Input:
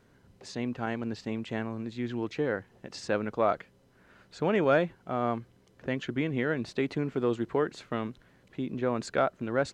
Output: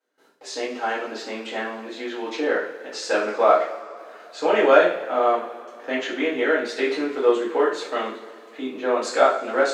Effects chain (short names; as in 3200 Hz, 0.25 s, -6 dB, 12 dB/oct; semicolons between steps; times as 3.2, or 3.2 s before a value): HPF 350 Hz 24 dB/oct; gate with hold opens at -56 dBFS; two-slope reverb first 0.44 s, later 2.5 s, from -19 dB, DRR -9 dB; gain +1 dB